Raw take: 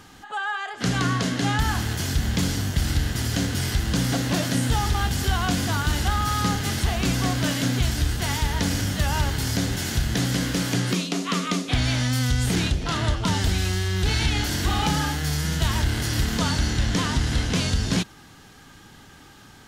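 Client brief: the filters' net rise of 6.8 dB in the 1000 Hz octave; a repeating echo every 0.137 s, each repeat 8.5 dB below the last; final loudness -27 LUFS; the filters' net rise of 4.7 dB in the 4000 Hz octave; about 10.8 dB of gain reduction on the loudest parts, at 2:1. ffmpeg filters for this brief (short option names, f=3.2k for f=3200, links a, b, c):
-af "equalizer=f=1k:t=o:g=8.5,equalizer=f=4k:t=o:g=5.5,acompressor=threshold=-37dB:ratio=2,aecho=1:1:137|274|411|548:0.376|0.143|0.0543|0.0206,volume=4dB"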